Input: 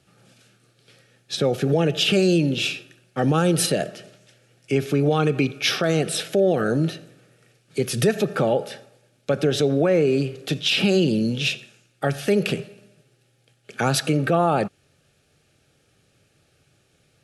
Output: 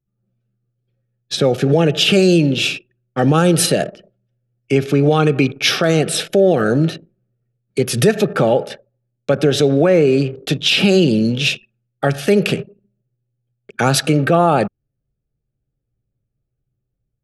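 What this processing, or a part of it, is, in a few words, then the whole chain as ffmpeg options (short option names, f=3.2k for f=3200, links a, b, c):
voice memo with heavy noise removal: -af "anlmdn=2.51,dynaudnorm=f=180:g=3:m=5dB,volume=1.5dB"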